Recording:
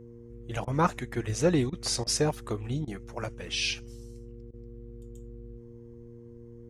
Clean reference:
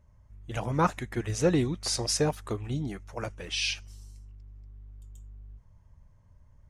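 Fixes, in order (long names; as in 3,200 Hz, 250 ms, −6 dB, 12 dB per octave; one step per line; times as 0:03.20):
hum removal 117.9 Hz, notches 4
repair the gap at 0:00.65/0:01.70/0:02.04/0:02.85/0:04.51, 24 ms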